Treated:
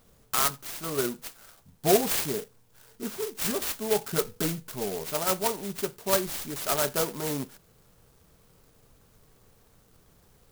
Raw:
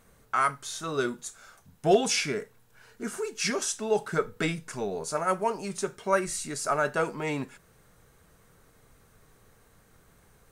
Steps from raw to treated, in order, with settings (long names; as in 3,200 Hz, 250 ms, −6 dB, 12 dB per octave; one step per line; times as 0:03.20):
converter with an unsteady clock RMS 0.14 ms